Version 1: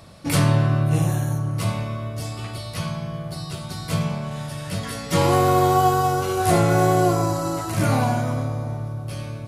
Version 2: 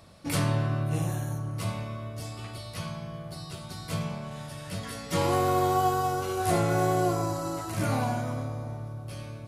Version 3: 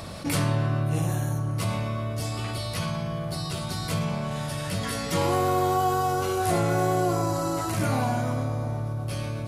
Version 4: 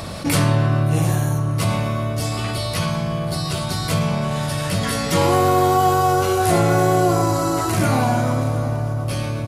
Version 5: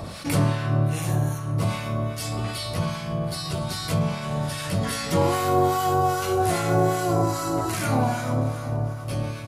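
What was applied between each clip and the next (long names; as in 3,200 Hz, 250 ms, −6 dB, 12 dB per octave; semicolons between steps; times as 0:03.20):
parametric band 140 Hz −3.5 dB 0.44 octaves; level −7 dB
envelope flattener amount 50%
single-tap delay 722 ms −16 dB; level +7.5 dB
two-band tremolo in antiphase 2.5 Hz, depth 70%, crossover 1,100 Hz; level −2 dB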